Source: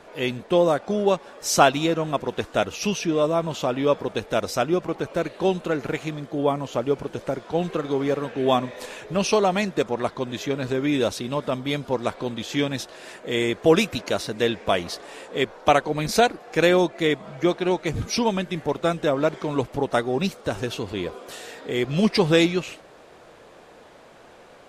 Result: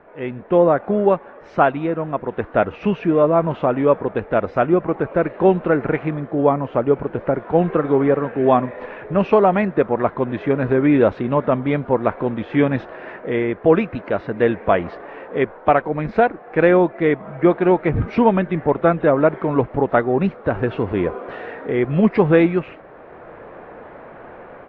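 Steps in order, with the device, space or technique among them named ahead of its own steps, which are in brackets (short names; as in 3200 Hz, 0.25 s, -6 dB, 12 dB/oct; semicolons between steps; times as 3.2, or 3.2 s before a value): action camera in a waterproof case (LPF 2000 Hz 24 dB/oct; AGC; gain -1 dB; AAC 64 kbps 22050 Hz)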